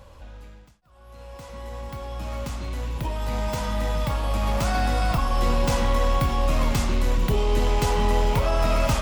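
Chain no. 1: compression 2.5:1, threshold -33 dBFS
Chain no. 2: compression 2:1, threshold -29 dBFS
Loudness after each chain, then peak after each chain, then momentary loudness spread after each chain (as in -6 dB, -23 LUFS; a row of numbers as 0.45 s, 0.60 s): -34.0 LUFS, -30.5 LUFS; -22.0 dBFS, -18.5 dBFS; 12 LU, 13 LU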